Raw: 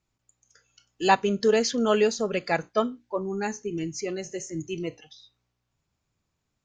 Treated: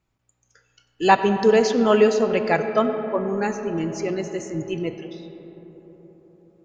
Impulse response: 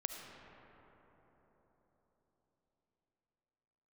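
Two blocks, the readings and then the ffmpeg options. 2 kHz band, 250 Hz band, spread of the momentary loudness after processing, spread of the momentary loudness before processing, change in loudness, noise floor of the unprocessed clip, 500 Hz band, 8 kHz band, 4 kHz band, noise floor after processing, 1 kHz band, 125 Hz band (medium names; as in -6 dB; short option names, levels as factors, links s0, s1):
+4.5 dB, +5.5 dB, 13 LU, 12 LU, +5.5 dB, -80 dBFS, +6.0 dB, no reading, +0.5 dB, -73 dBFS, +5.0 dB, +5.5 dB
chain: -filter_complex "[0:a]asplit=2[s0][s1];[1:a]atrim=start_sample=2205,lowpass=3500[s2];[s1][s2]afir=irnorm=-1:irlink=0,volume=1.19[s3];[s0][s3]amix=inputs=2:normalize=0,volume=0.891"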